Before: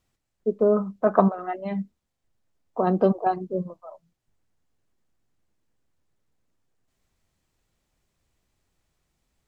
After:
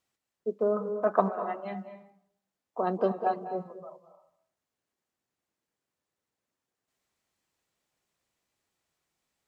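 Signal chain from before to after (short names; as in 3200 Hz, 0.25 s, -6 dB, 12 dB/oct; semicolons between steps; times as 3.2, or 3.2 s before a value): HPF 430 Hz 6 dB/oct; on a send: reverb RT60 0.70 s, pre-delay 0.19 s, DRR 9.5 dB; on the sum: gain -3.5 dB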